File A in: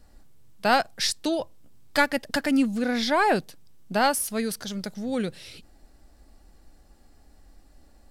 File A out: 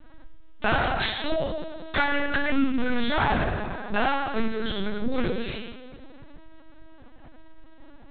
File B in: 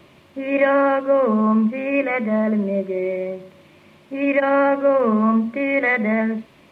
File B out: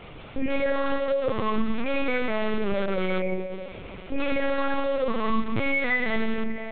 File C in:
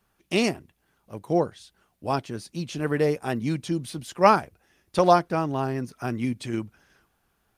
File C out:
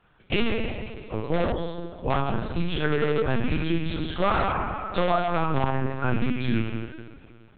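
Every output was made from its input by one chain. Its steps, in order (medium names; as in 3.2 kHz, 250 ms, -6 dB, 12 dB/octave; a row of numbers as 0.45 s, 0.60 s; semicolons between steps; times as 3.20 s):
rattle on loud lows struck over -26 dBFS, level -27 dBFS; two-slope reverb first 0.77 s, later 2.5 s, from -18 dB, DRR -5 dB; in parallel at -6 dB: integer overflow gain 12.5 dB; on the sum: compression 4:1, threshold -21 dBFS; peaking EQ 1.3 kHz +3 dB 0.35 oct; LPC vocoder at 8 kHz pitch kept; dynamic bell 610 Hz, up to -3 dB, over -33 dBFS, Q 0.88; normalise loudness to -27 LUFS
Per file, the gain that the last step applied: +0.5 dB, -1.0 dB, +1.0 dB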